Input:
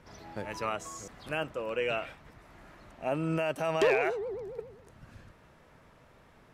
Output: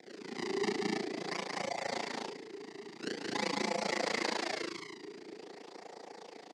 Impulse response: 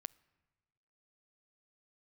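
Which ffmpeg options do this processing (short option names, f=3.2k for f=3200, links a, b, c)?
-filter_complex "[0:a]asettb=1/sr,asplit=3[a][b][c];[a]atrim=end=0.694[d];[b]atrim=start=0.69:end=3.35,asetpts=PTS-STARTPTS,afade=t=in:d=0.004:c=qsin,afade=t=out:st=2.656:d=0.004:c=qsin,acompressor=threshold=-38dB:ratio=12[e];[c]atrim=start=3.346[f];[d][e]acrossfade=d=0.004:c1=hsin:c2=qsin[g];[g][f]acrossfade=d=0.004:c1=qsin:c2=hsin,equalizer=f=1.2k:t=o:w=1.3:g=9.5,acrusher=samples=26:mix=1:aa=0.000001:lfo=1:lforange=41.6:lforate=0.47,aecho=1:1:172|244.9|288.6:0.631|0.708|0.355,alimiter=level_in=1dB:limit=-24dB:level=0:latency=1:release=13,volume=-1dB,asplit=2[h][i];[i]adelay=46,volume=-4.5dB[j];[h][j]amix=inputs=2:normalize=0,tremolo=f=28:d=0.947,afreqshift=-440,highpass=f=210:w=0.5412,highpass=f=210:w=1.3066,equalizer=f=240:t=q:w=4:g=-3,equalizer=f=460:t=q:w=4:g=7,equalizer=f=740:t=q:w=4:g=5,equalizer=f=1.3k:t=q:w=4:g=-5,equalizer=f=2k:t=q:w=4:g=8,equalizer=f=4.7k:t=q:w=4:g=9,lowpass=f=7.7k:w=0.5412,lowpass=f=7.7k:w=1.3066,volume=2dB"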